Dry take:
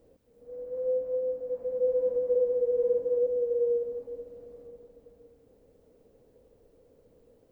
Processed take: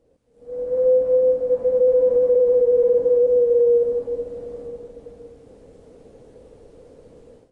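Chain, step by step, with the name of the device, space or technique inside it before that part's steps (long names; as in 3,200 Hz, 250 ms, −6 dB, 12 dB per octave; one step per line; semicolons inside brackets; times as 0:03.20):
low-bitrate web radio (automatic gain control gain up to 16 dB; brickwall limiter −9 dBFS, peak gain reduction 6 dB; level −2 dB; AAC 32 kbit/s 22,050 Hz)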